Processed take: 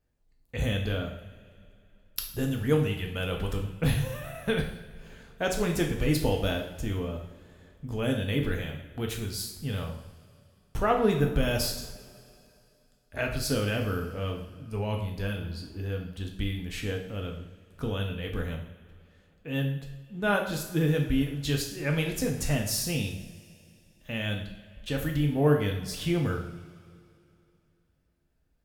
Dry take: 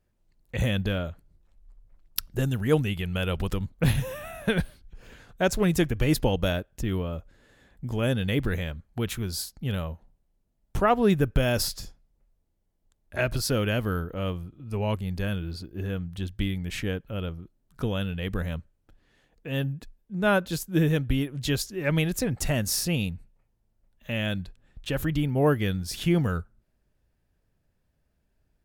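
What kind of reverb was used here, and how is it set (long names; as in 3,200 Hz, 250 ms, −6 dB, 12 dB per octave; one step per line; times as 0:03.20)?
coupled-rooms reverb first 0.64 s, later 2.8 s, from −18 dB, DRR 1.5 dB
level −4.5 dB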